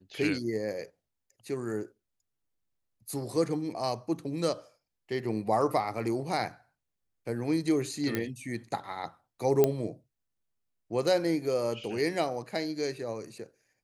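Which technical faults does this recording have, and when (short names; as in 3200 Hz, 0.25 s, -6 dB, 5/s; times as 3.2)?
8.15 pop -15 dBFS
9.64 pop -10 dBFS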